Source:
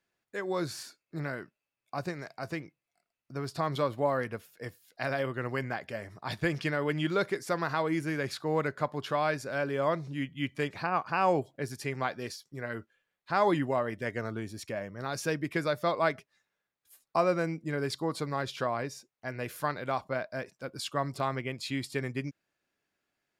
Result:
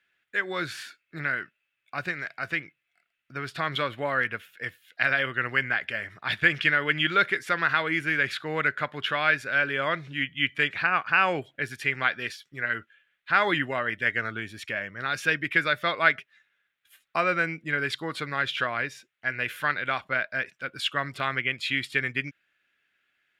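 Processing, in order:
flat-topped bell 2,200 Hz +15.5 dB
level −2 dB

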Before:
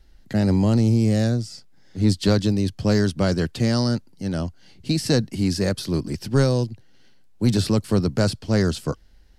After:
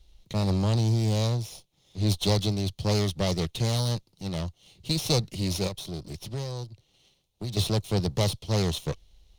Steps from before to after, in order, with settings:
lower of the sound and its delayed copy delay 0.32 ms
graphic EQ with 15 bands 250 Hz −12 dB, 1,600 Hz −6 dB, 4,000 Hz +8 dB
0:05.67–0:07.57: downward compressor 2.5 to 1, threshold −33 dBFS, peak gain reduction 11.5 dB
level −2.5 dB

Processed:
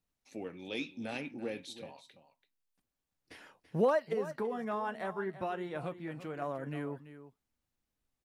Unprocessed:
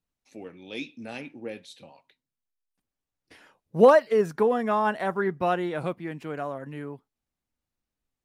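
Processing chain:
downward compressor 2 to 1, threshold −35 dBFS, peak gain reduction 13 dB
0:04.13–0:06.42: flanger 1.2 Hz, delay 6.3 ms, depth 3 ms, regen −67%
single-tap delay 335 ms −13.5 dB

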